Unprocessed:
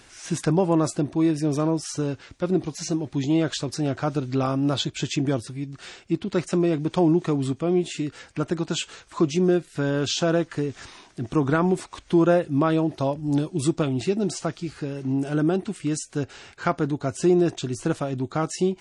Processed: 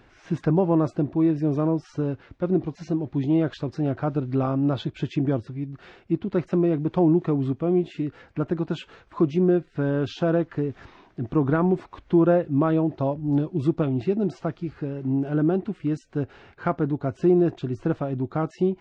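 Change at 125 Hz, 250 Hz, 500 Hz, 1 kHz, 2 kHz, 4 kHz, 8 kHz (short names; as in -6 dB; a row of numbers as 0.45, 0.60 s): +1.0 dB, +0.5 dB, 0.0 dB, -2.0 dB, -5.0 dB, -12.0 dB, under -20 dB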